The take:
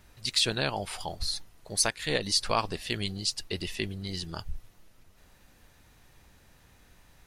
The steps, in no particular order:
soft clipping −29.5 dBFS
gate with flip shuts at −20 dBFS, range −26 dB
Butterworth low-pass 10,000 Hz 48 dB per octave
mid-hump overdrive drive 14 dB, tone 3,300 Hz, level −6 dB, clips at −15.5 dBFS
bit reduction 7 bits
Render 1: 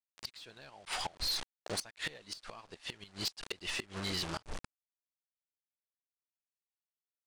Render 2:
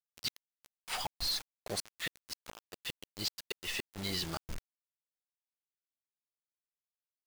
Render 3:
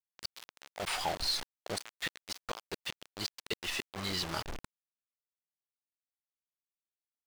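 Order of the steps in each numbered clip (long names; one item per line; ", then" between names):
bit reduction, then Butterworth low-pass, then mid-hump overdrive, then gate with flip, then soft clipping
mid-hump overdrive, then gate with flip, then Butterworth low-pass, then soft clipping, then bit reduction
Butterworth low-pass, then gate with flip, then soft clipping, then bit reduction, then mid-hump overdrive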